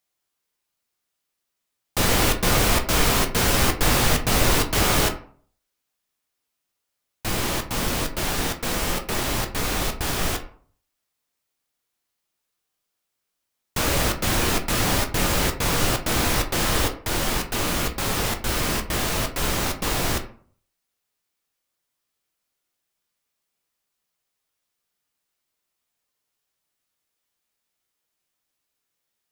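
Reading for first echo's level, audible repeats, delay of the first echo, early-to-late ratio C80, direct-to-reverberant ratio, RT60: none, none, none, 16.0 dB, 4.5 dB, 0.50 s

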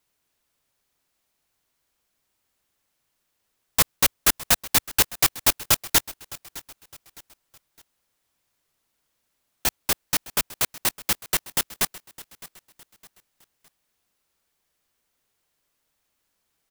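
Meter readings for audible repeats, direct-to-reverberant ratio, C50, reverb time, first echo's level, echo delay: 2, none, none, none, -19.0 dB, 0.611 s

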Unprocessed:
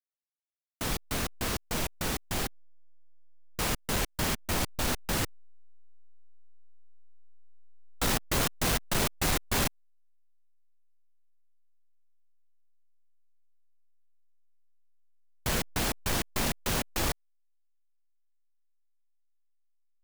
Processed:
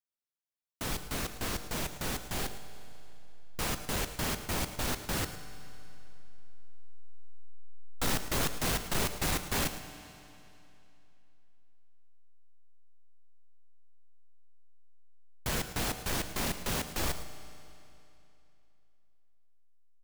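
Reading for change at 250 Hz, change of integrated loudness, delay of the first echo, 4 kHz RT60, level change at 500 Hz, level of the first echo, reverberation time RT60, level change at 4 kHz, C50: -3.0 dB, -3.0 dB, 0.109 s, 2.7 s, -3.0 dB, -14.5 dB, 2.9 s, -3.0 dB, 9.5 dB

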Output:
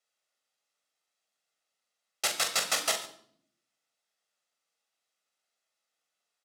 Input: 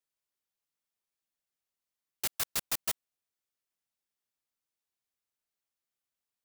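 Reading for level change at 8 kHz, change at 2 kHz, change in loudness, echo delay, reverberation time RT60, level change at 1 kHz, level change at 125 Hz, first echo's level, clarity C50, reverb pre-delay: +6.0 dB, +9.5 dB, +5.0 dB, 41 ms, 0.60 s, +10.0 dB, -4.0 dB, -8.0 dB, 9.5 dB, 8 ms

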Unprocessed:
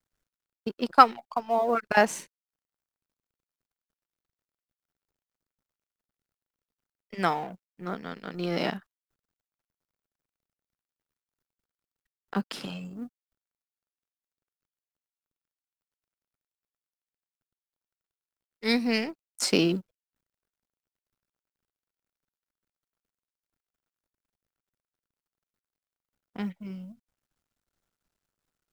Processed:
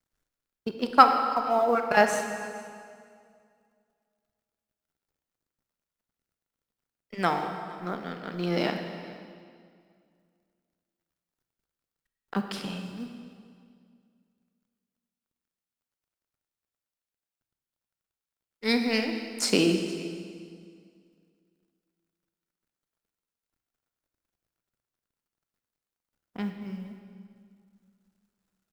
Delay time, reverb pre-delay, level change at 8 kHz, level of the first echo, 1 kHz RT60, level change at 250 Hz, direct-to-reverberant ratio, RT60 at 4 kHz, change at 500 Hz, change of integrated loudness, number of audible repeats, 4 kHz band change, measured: 0.464 s, 25 ms, +1.0 dB, -22.0 dB, 2.1 s, +1.0 dB, 5.0 dB, 1.8 s, +1.5 dB, 0.0 dB, 1, +1.0 dB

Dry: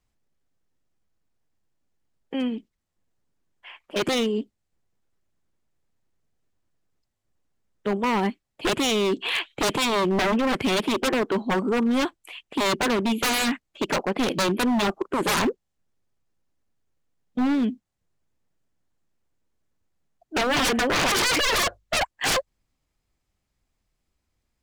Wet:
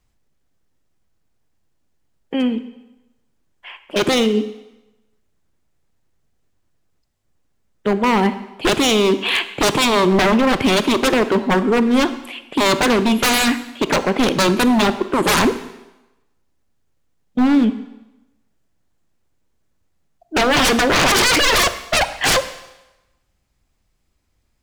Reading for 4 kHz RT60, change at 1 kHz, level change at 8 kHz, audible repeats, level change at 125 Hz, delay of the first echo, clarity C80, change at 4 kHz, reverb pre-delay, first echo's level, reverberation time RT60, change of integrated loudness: 0.95 s, +7.5 dB, +7.0 dB, none, +8.0 dB, none, 15.0 dB, +7.5 dB, 25 ms, none, 1.0 s, +7.5 dB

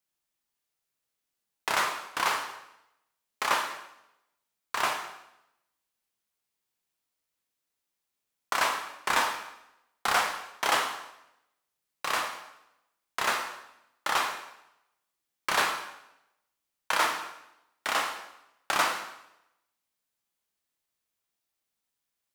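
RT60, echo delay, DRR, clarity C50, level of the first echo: 0.85 s, none, 3.0 dB, 6.5 dB, none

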